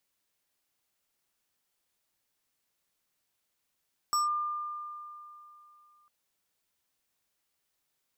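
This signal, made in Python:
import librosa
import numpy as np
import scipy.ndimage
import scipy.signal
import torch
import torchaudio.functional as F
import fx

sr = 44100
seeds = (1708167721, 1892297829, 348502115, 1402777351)

y = fx.fm2(sr, length_s=1.95, level_db=-23.5, carrier_hz=1200.0, ratio=5.55, index=0.81, index_s=0.15, decay_s=3.0, shape='linear')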